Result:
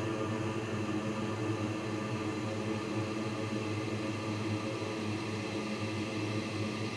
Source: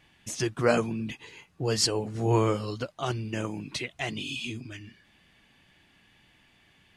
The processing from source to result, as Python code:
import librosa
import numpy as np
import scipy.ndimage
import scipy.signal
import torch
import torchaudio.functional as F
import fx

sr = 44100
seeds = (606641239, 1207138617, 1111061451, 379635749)

y = fx.granulator(x, sr, seeds[0], grain_ms=100.0, per_s=20.0, spray_ms=100.0, spread_st=0)
y = fx.paulstretch(y, sr, seeds[1], factor=42.0, window_s=1.0, from_s=3.47)